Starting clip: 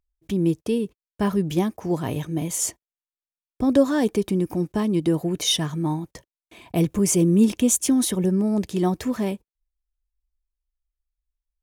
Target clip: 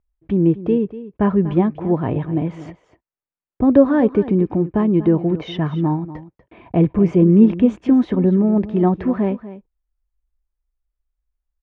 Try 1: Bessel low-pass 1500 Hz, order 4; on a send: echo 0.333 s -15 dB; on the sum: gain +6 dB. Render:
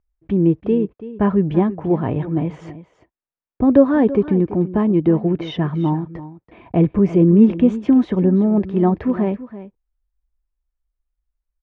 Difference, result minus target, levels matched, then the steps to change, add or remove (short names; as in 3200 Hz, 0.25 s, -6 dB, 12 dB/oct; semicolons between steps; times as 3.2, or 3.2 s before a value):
echo 91 ms late
change: echo 0.242 s -15 dB